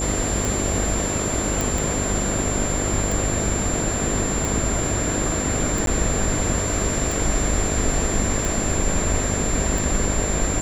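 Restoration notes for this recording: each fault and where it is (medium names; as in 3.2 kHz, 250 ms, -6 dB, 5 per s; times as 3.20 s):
buzz 50 Hz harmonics 13 -28 dBFS
tick 45 rpm
whine 7.3 kHz -26 dBFS
1.61 s: pop
5.86–5.87 s: dropout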